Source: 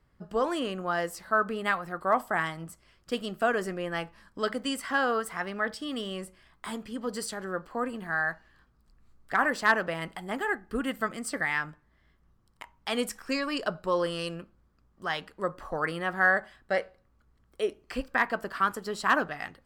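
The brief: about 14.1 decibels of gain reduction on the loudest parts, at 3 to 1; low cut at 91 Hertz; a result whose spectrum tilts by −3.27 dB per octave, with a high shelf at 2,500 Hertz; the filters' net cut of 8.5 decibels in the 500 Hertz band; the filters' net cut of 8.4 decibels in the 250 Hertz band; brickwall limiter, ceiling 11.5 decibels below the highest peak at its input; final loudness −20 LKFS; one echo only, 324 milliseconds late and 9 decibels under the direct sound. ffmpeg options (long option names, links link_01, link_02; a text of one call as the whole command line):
ffmpeg -i in.wav -af "highpass=91,equalizer=frequency=250:width_type=o:gain=-8,equalizer=frequency=500:width_type=o:gain=-8.5,highshelf=frequency=2500:gain=-4,acompressor=threshold=-40dB:ratio=3,alimiter=level_in=11dB:limit=-24dB:level=0:latency=1,volume=-11dB,aecho=1:1:324:0.355,volume=25.5dB" out.wav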